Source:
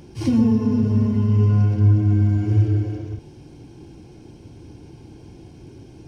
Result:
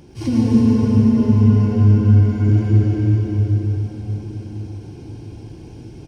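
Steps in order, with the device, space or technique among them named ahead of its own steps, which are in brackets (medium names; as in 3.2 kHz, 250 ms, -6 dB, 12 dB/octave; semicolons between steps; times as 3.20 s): cave (delay 326 ms -8.5 dB; reverberation RT60 4.5 s, pre-delay 80 ms, DRR -3.5 dB); trim -1 dB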